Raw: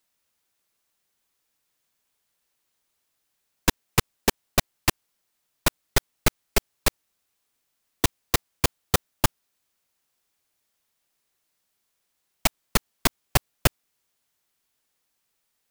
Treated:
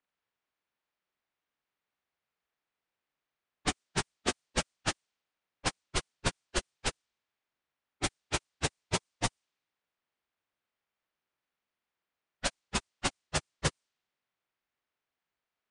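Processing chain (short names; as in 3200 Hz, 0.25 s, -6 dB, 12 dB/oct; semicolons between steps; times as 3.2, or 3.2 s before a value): inharmonic rescaling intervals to 82%; low-pass opened by the level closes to 2300 Hz, open at -22.5 dBFS; gain -6 dB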